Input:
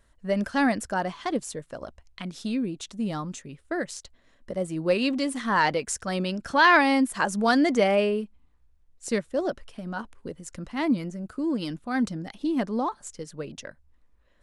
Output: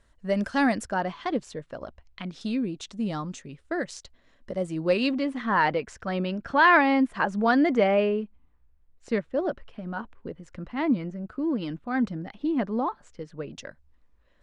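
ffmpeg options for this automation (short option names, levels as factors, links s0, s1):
-af "asetnsamples=n=441:p=0,asendcmd='0.86 lowpass f 4100;2.41 lowpass f 6600;5.13 lowpass f 2700;13.53 lowpass f 6500',lowpass=8600"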